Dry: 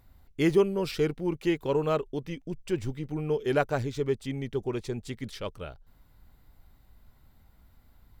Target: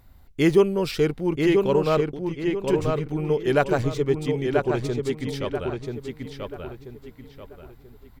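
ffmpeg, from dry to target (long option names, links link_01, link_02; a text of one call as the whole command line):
ffmpeg -i in.wav -filter_complex "[0:a]asettb=1/sr,asplit=3[link_01][link_02][link_03];[link_01]atrim=end=2.064[link_04];[link_02]atrim=start=2.06:end=2.62,asetpts=PTS-STARTPTS,afade=type=in:duration=0.004:curve=qsin,afade=type=out:start_time=0.556:duration=0.004:curve=qsin,acompressor=threshold=-40dB:ratio=4[link_05];[link_03]atrim=start=2.616[link_06];[link_04][link_05]acrossfade=duration=0.004:curve1=hsin:curve2=qsin[link_07];[link_07][link_06]acrossfade=duration=0.004:curve1=qsin:curve2=hsin,asplit=2[link_08][link_09];[link_09]adelay=985,lowpass=frequency=3900:poles=1,volume=-4dB,asplit=2[link_10][link_11];[link_11]adelay=985,lowpass=frequency=3900:poles=1,volume=0.35,asplit=2[link_12][link_13];[link_13]adelay=985,lowpass=frequency=3900:poles=1,volume=0.35,asplit=2[link_14][link_15];[link_15]adelay=985,lowpass=frequency=3900:poles=1,volume=0.35[link_16];[link_08][link_10][link_12][link_14][link_16]amix=inputs=5:normalize=0,volume=5dB" out.wav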